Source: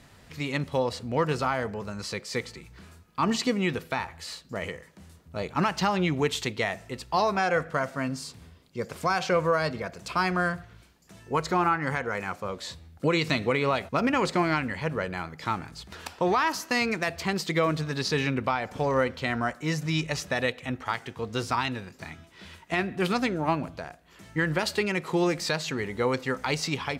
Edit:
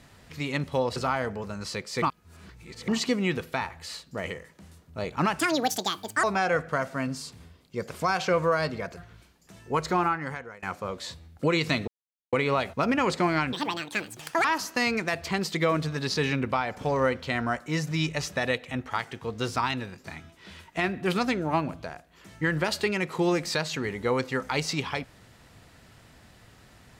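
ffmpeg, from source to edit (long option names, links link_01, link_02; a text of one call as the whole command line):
ffmpeg -i in.wav -filter_complex "[0:a]asplit=11[link_01][link_02][link_03][link_04][link_05][link_06][link_07][link_08][link_09][link_10][link_11];[link_01]atrim=end=0.962[link_12];[link_02]atrim=start=1.338:end=2.402[link_13];[link_03]atrim=start=2.398:end=3.262,asetpts=PTS-STARTPTS,areverse[link_14];[link_04]atrim=start=3.258:end=5.774[link_15];[link_05]atrim=start=5.77:end=7.25,asetpts=PTS-STARTPTS,asetrate=77175,aresample=44100[link_16];[link_06]atrim=start=7.246:end=9.982[link_17];[link_07]atrim=start=10.568:end=12.23,asetpts=PTS-STARTPTS,afade=type=out:start_time=0.992:duration=0.67:silence=0.0668344[link_18];[link_08]atrim=start=12.23:end=13.48,asetpts=PTS-STARTPTS,afade=type=in:duration=0.004:curve=hsin:silence=0.0668344,afade=type=out:start_time=1.246:duration=0.004:curve=hsin,apad=pad_dur=0.45[link_19];[link_09]atrim=start=13.48:end=14.684,asetpts=PTS-STARTPTS,afade=type=in:duration=0.004:curve=hsin[link_20];[link_10]atrim=start=14.68:end=16.39,asetpts=PTS-STARTPTS,asetrate=82026,aresample=44100[link_21];[link_11]atrim=start=16.386[link_22];[link_12][link_13]acrossfade=duration=0.004:curve1=hsin:curve2=hsin[link_23];[link_23][link_14]acrossfade=duration=0.004:curve1=hsin:curve2=hsin[link_24];[link_24][link_15]acrossfade=duration=0.004:curve1=hsin:curve2=hsin[link_25];[link_25][link_16]acrossfade=duration=0.004:curve1=hsin:curve2=hsin[link_26];[link_26][link_17]acrossfade=duration=0.004:curve1=hsin:curve2=hsin[link_27];[link_18][link_19][link_20]concat=n=3:v=0:a=1[link_28];[link_27][link_28]acrossfade=duration=0.004:curve1=hsin:curve2=hsin[link_29];[link_29][link_21]acrossfade=duration=0.004:curve1=hsin:curve2=hsin[link_30];[link_30][link_22]acrossfade=duration=0.004:curve1=hsin:curve2=hsin" out.wav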